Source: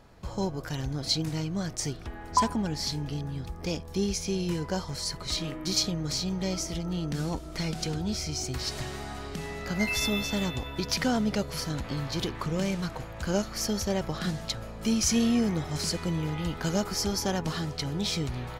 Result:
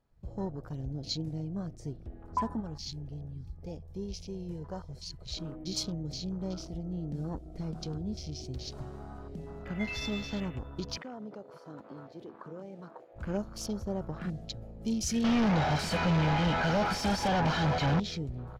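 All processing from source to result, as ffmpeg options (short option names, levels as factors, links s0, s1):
-filter_complex "[0:a]asettb=1/sr,asplit=3[s0][s1][s2];[s0]atrim=end=2.604[s3];[s1]atrim=start=2.6:end=5.37,asetpts=PTS-STARTPTS,afade=t=in:d=0.004:c=qsin,afade=t=out:st=2.766:d=0.004:c=qsin,equalizer=f=260:t=o:w=1.3:g=-8,aecho=1:1:614:0.075,atrim=end_sample=122157[s4];[s2]atrim=start=5.366[s5];[s3][s4]acrossfade=d=0.004:c1=hsin:c2=qsin[s6];[s6][s5]acrossfade=d=0.004:c1=qsin:c2=hsin,asettb=1/sr,asplit=3[s7][s8][s9];[s7]atrim=end=10.974[s10];[s8]atrim=start=10.97:end=13.16,asetpts=PTS-STARTPTS,afade=t=in:d=0.004:c=qsin,afade=t=out:st=2.186:d=0.004:c=qsin,highpass=330,acompressor=threshold=0.0251:ratio=6:attack=3.2:release=140:knee=1:detection=peak,aemphasis=mode=reproduction:type=cd[s11];[s9]atrim=start=13.156[s12];[s10][s11]acrossfade=d=0.004:c1=hsin:c2=qsin[s13];[s13][s12]acrossfade=d=0.004:c1=qsin:c2=hsin,asettb=1/sr,asplit=3[s14][s15][s16];[s14]atrim=end=15.244[s17];[s15]atrim=start=15.24:end=18,asetpts=PTS-STARTPTS,afade=t=in:d=0.004:c=qsin,afade=t=out:st=2.756:d=0.004:c=qsin,aecho=1:1:1.3:0.72,atrim=end_sample=121716,asplit=2[s18][s19];[s19]highpass=f=720:p=1,volume=79.4,asoftclip=type=tanh:threshold=0.224[s20];[s18][s20]amix=inputs=2:normalize=0,lowpass=f=1600:p=1,volume=0.501[s21];[s16]atrim=start=17.996[s22];[s17][s21]acrossfade=d=0.004:c1=hsin:c2=qsin[s23];[s23][s22]acrossfade=d=0.004:c1=qsin:c2=hsin,afwtdn=0.0141,lowshelf=f=410:g=4,volume=0.398"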